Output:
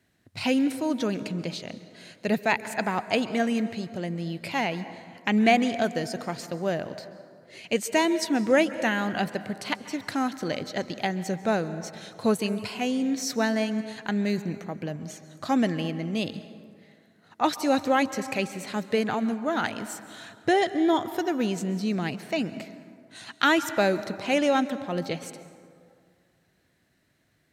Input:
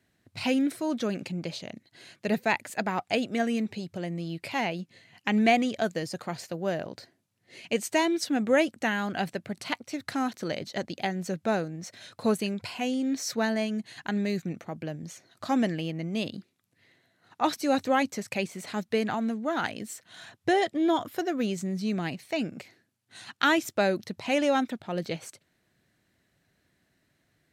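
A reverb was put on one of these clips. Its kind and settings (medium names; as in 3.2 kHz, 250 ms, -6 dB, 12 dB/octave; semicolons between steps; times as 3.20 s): plate-style reverb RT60 2.2 s, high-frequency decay 0.45×, pre-delay 120 ms, DRR 13 dB; trim +2 dB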